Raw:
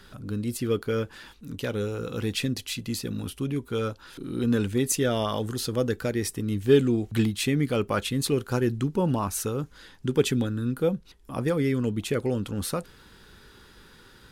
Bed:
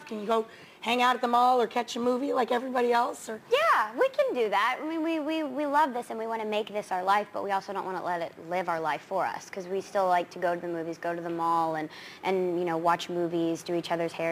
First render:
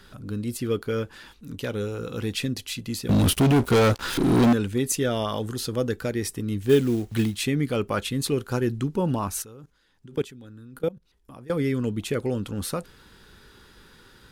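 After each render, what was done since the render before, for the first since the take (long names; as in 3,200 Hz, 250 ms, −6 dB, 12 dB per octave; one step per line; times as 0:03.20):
0:03.09–0:04.53: leveller curve on the samples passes 5
0:06.69–0:07.37: log-companded quantiser 6 bits
0:09.42–0:11.50: output level in coarse steps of 22 dB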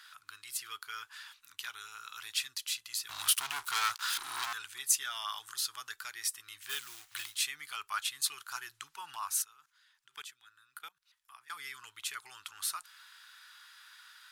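inverse Chebyshev high-pass filter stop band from 570 Hz, stop band 40 dB
dynamic equaliser 2,100 Hz, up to −6 dB, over −48 dBFS, Q 1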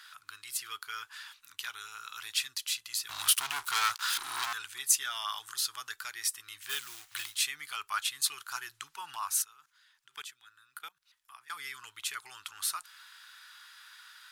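level +2.5 dB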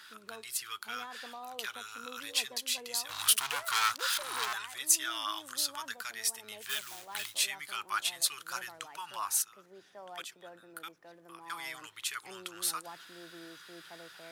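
mix in bed −23 dB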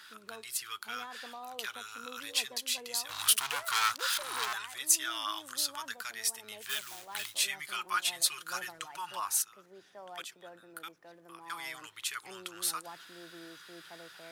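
0:07.45–0:09.20: comb filter 5.6 ms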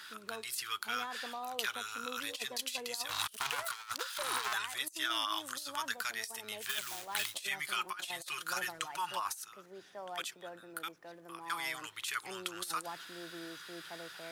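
compressor whose output falls as the input rises −36 dBFS, ratio −0.5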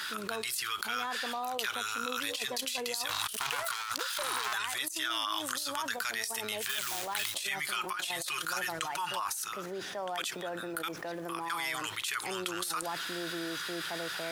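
envelope flattener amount 70%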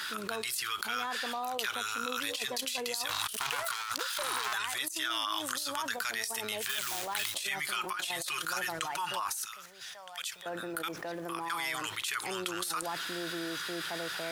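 0:09.45–0:10.46: guitar amp tone stack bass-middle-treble 10-0-10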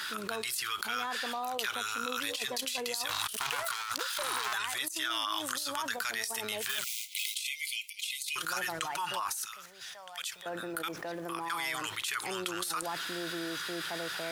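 0:06.84–0:08.36: linear-phase brick-wall high-pass 2,000 Hz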